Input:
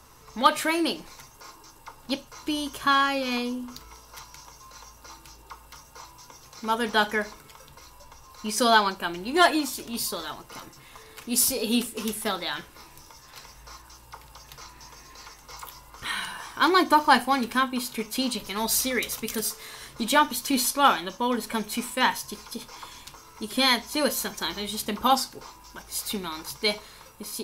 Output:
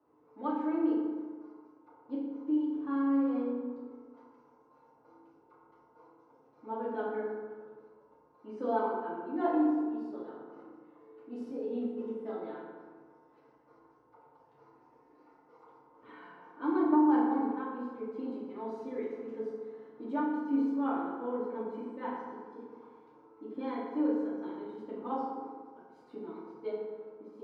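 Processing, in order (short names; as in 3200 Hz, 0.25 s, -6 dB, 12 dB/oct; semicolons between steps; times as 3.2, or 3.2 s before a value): ladder band-pass 400 Hz, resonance 25%; FDN reverb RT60 1.6 s, low-frequency decay 0.95×, high-frequency decay 0.5×, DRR -8 dB; gain -5 dB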